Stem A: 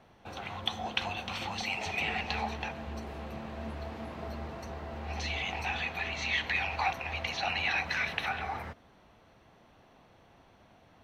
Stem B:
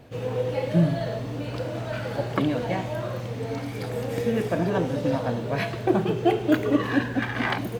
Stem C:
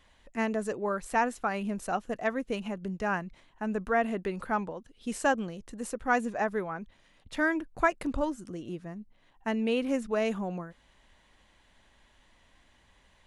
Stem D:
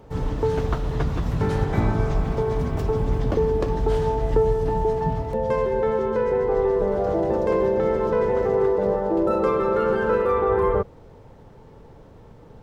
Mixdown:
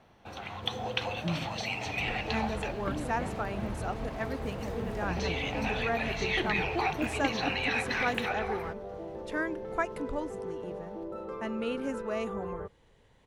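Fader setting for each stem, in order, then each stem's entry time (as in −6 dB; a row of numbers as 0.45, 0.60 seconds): −0.5, −13.0, −5.5, −18.5 decibels; 0.00, 0.50, 1.95, 1.85 seconds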